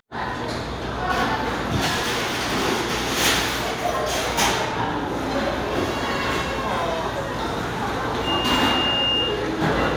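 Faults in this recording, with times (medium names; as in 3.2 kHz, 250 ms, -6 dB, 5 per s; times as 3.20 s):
1.86–2.66 s: clipped -19.5 dBFS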